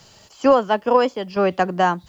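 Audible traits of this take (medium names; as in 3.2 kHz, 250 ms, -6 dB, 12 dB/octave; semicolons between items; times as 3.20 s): random-step tremolo 4.4 Hz, depth 70%; a quantiser's noise floor 12-bit, dither triangular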